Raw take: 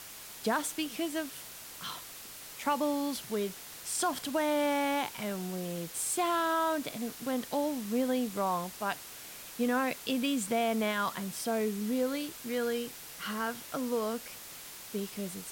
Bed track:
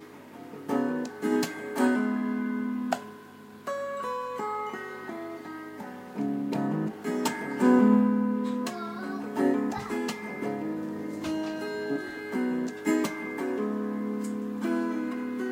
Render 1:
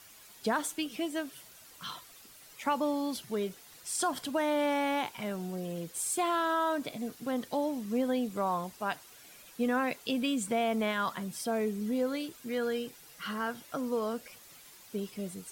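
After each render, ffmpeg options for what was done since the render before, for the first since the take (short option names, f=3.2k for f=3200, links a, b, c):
-af "afftdn=nr=10:nf=-47"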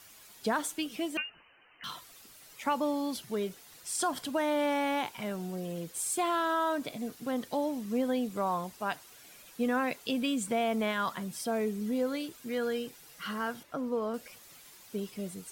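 -filter_complex "[0:a]asettb=1/sr,asplit=3[a][b][c];[a]atrim=end=1.174[d];[b]atrim=start=1.17:end=1.84,asetpts=PTS-STARTPTS,afade=t=in:d=0.004:c=qsin,afade=t=out:st=0.666:d=0.004:c=qsin,lowpass=f=2.6k:t=q:w=0.5098,lowpass=f=2.6k:t=q:w=0.6013,lowpass=f=2.6k:t=q:w=0.9,lowpass=f=2.6k:t=q:w=2.563,afreqshift=-3100[e];[c]atrim=start=1.836[f];[d][e]acrossfade=d=0.004:c1=hsin:c2=qsin[g];[g][f]acrossfade=d=0.004:c1=qsin:c2=hsin,asettb=1/sr,asplit=3[h][i][j];[h]atrim=end=13.634[k];[i]atrim=start=13.63:end=14.14,asetpts=PTS-STARTPTS,afade=t=in:d=0.004:c=qsin,afade=t=out:st=0.506:d=0.004:c=qsin,highshelf=f=3.3k:g=-12[l];[j]atrim=start=14.136[m];[k][l]acrossfade=d=0.004:c1=hsin:c2=qsin[n];[n][m]acrossfade=d=0.004:c1=qsin:c2=hsin"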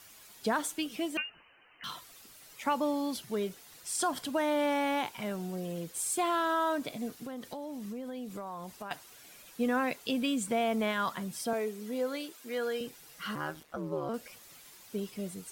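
-filter_complex "[0:a]asettb=1/sr,asplit=3[a][b][c];[a]atrim=end=7.214[d];[b]atrim=start=7.21:end=8.91,asetpts=PTS-STARTPTS,afade=t=in:d=0.004:c=qsin,afade=t=out:st=1.696:d=0.004:c=qsin,acompressor=threshold=-37dB:ratio=6:attack=3.2:release=140:knee=1:detection=peak[e];[c]atrim=start=8.906[f];[d][e]acrossfade=d=0.004:c1=hsin:c2=qsin[g];[g][f]acrossfade=d=0.004:c1=qsin:c2=hsin,asettb=1/sr,asplit=3[h][i][j];[h]atrim=end=11.534[k];[i]atrim=start=11.53:end=12.81,asetpts=PTS-STARTPTS,afade=t=in:d=0.004:c=qsin,afade=t=out:st=1.276:d=0.004:c=qsin,highpass=330[l];[j]atrim=start=12.806[m];[k][l]acrossfade=d=0.004:c1=hsin:c2=qsin[n];[n][m]acrossfade=d=0.004:c1=qsin:c2=hsin,asettb=1/sr,asplit=3[o][p][q];[o]atrim=end=13.354[r];[p]atrim=start=13.35:end=14.09,asetpts=PTS-STARTPTS,afade=t=in:d=0.004:c=qsin,afade=t=out:st=0.736:d=0.004:c=qsin,aeval=exprs='val(0)*sin(2*PI*76*n/s)':c=same[s];[q]atrim=start=14.086[t];[r][s]acrossfade=d=0.004:c1=hsin:c2=qsin[u];[u][t]acrossfade=d=0.004:c1=qsin:c2=hsin"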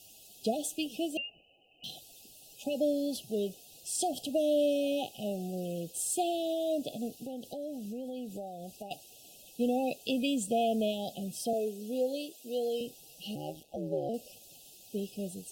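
-af "afftfilt=real='re*(1-between(b*sr/4096,820,2500))':imag='im*(1-between(b*sr/4096,820,2500))':win_size=4096:overlap=0.75,adynamicequalizer=threshold=0.00501:dfrequency=580:dqfactor=3.4:tfrequency=580:tqfactor=3.4:attack=5:release=100:ratio=0.375:range=2:mode=boostabove:tftype=bell"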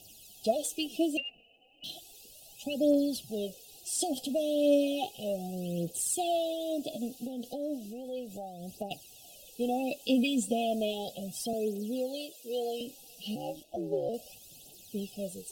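-af "aphaser=in_gain=1:out_gain=1:delay=4.5:decay=0.56:speed=0.34:type=triangular"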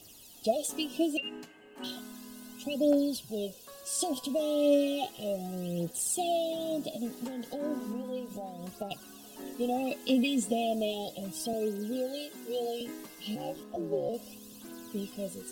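-filter_complex "[1:a]volume=-19dB[a];[0:a][a]amix=inputs=2:normalize=0"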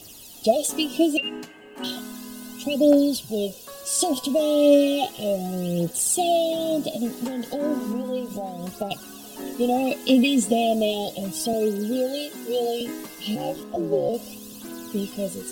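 -af "volume=9dB"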